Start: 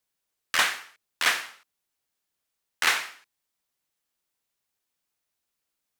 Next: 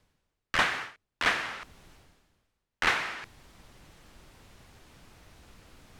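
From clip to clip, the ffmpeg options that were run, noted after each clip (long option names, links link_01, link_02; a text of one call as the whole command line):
ffmpeg -i in.wav -af "areverse,acompressor=mode=upward:threshold=-25dB:ratio=2.5,areverse,aemphasis=mode=reproduction:type=riaa" out.wav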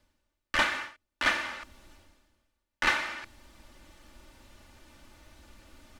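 ffmpeg -i in.wav -af "aecho=1:1:3.4:0.69,volume=-2dB" out.wav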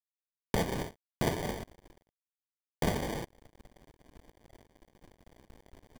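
ffmpeg -i in.wav -af "acompressor=threshold=-30dB:ratio=12,acrusher=samples=33:mix=1:aa=0.000001,aeval=exprs='sgn(val(0))*max(abs(val(0))-0.00237,0)':channel_layout=same,volume=5dB" out.wav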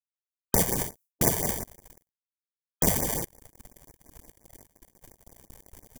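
ffmpeg -i in.wav -af "agate=range=-33dB:threshold=-56dB:ratio=3:detection=peak,aexciter=amount=5.1:drive=5.8:freq=5800,afftfilt=real='re*(1-between(b*sr/1024,240*pow(3600/240,0.5+0.5*sin(2*PI*5.7*pts/sr))/1.41,240*pow(3600/240,0.5+0.5*sin(2*PI*5.7*pts/sr))*1.41))':imag='im*(1-between(b*sr/1024,240*pow(3600/240,0.5+0.5*sin(2*PI*5.7*pts/sr))/1.41,240*pow(3600/240,0.5+0.5*sin(2*PI*5.7*pts/sr))*1.41))':win_size=1024:overlap=0.75,volume=4dB" out.wav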